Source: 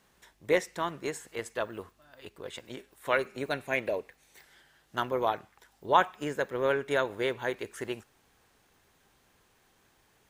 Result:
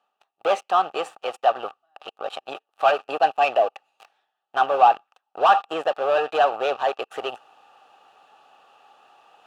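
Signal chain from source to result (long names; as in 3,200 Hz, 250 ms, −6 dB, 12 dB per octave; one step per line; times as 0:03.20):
high-pass filter 180 Hz 6 dB per octave
leveller curve on the samples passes 5
reversed playback
upward compression, threshold −27 dBFS
reversed playback
formant filter a
wrong playback speed 44.1 kHz file played as 48 kHz
level +7 dB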